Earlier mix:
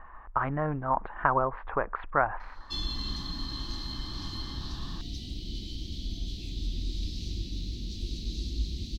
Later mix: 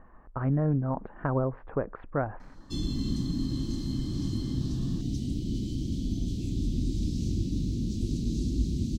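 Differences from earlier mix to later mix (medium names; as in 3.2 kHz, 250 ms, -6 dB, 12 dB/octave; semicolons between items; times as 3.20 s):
speech -5.5 dB; master: add graphic EQ 125/250/500/1000/2000/4000/8000 Hz +12/+10/+6/-7/-3/-10/+10 dB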